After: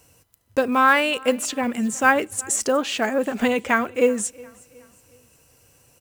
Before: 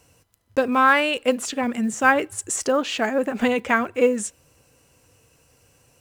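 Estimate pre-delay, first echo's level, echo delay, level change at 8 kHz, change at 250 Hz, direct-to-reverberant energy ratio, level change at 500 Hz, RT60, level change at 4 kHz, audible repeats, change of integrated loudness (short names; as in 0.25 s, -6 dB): none, -24.0 dB, 0.366 s, +3.0 dB, 0.0 dB, none, 0.0 dB, none, +0.5 dB, 2, 0.0 dB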